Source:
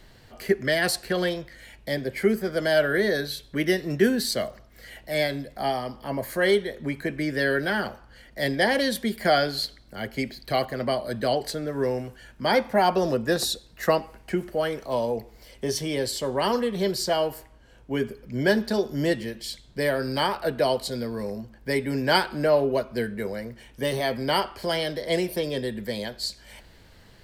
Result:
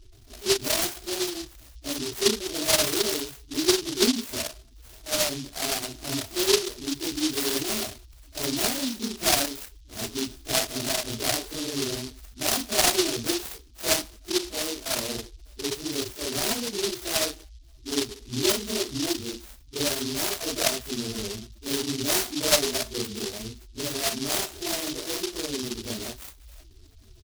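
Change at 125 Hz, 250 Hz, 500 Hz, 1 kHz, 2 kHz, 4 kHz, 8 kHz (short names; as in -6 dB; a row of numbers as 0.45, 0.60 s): -6.5, -2.5, -6.0, -7.0, -5.0, +4.0, +11.5 dB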